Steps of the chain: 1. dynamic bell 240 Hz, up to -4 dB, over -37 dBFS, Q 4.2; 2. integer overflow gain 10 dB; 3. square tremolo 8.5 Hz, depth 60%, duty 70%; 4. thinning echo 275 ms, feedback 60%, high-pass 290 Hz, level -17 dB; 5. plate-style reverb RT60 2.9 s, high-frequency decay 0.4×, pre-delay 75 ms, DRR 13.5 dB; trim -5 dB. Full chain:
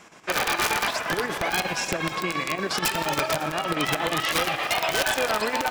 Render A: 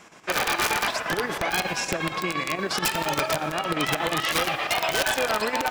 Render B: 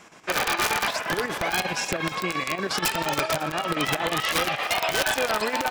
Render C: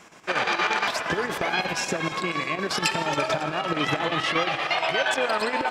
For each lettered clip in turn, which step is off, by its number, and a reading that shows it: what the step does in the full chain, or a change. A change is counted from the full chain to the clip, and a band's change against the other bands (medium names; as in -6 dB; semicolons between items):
4, echo-to-direct -11.5 dB to -13.5 dB; 5, echo-to-direct -11.5 dB to -15.5 dB; 2, distortion -6 dB